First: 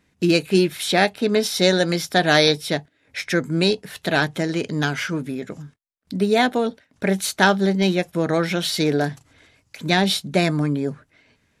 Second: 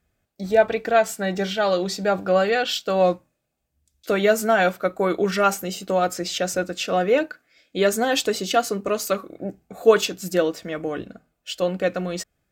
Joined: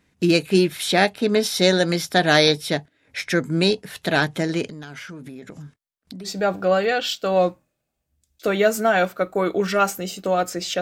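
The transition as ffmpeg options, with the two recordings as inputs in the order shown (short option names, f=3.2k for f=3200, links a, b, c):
-filter_complex "[0:a]asettb=1/sr,asplit=3[a][b][c];[a]atrim=end=4.684[d];[b]atrim=start=4.68:end=6.29,asetpts=PTS-STARTPTS,afade=t=in:d=0.004:c=qsin,afade=t=out:st=1.606:d=0.004:c=qsin,acompressor=threshold=-33dB:ratio=10:attack=3.2:release=140:knee=1:detection=peak[e];[c]atrim=start=6.286[f];[d][e]acrossfade=d=0.004:c1=hsin:c2=qsin[g];[g][f]acrossfade=d=0.004:c1=qsin:c2=hsin,apad=whole_dur=10.81,atrim=end=10.81,atrim=end=6.29,asetpts=PTS-STARTPTS[h];[1:a]atrim=start=1.87:end=6.45,asetpts=PTS-STARTPTS[i];[h][i]acrossfade=d=0.06:c1=tri:c2=tri"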